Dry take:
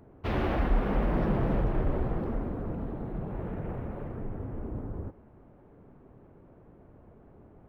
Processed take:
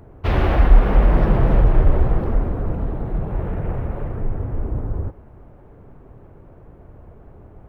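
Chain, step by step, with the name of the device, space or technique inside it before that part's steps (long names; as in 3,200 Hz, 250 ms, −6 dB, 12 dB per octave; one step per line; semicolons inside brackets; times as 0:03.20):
low shelf boost with a cut just above (low-shelf EQ 110 Hz +7.5 dB; parametric band 230 Hz −5.5 dB 1.2 octaves)
level +9 dB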